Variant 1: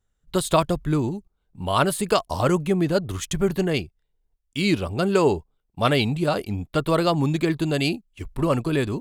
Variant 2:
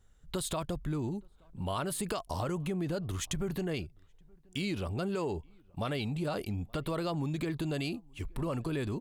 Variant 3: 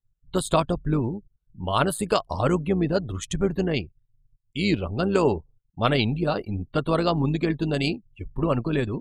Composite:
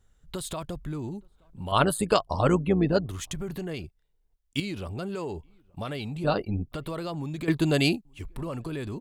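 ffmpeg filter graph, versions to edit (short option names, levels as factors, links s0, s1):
-filter_complex "[2:a]asplit=2[s0][s1];[0:a]asplit=2[s2][s3];[1:a]asplit=5[s4][s5][s6][s7][s8];[s4]atrim=end=1.722[s9];[s0]atrim=start=1.718:end=3.062[s10];[s5]atrim=start=3.058:end=3.842[s11];[s2]atrim=start=3.838:end=4.602[s12];[s6]atrim=start=4.598:end=6.242[s13];[s1]atrim=start=6.238:end=6.722[s14];[s7]atrim=start=6.718:end=7.482[s15];[s3]atrim=start=7.478:end=8.052[s16];[s8]atrim=start=8.048[s17];[s9][s10]acrossfade=d=0.004:c1=hsin:c2=hsin[s18];[s18][s11]acrossfade=d=0.004:c1=hsin:c2=hsin[s19];[s19][s12]acrossfade=d=0.004:c1=hsin:c2=hsin[s20];[s20][s13]acrossfade=d=0.004:c1=hsin:c2=hsin[s21];[s21][s14]acrossfade=d=0.004:c1=hsin:c2=hsin[s22];[s22][s15]acrossfade=d=0.004:c1=hsin:c2=hsin[s23];[s23][s16]acrossfade=d=0.004:c1=hsin:c2=hsin[s24];[s24][s17]acrossfade=d=0.004:c1=hsin:c2=hsin"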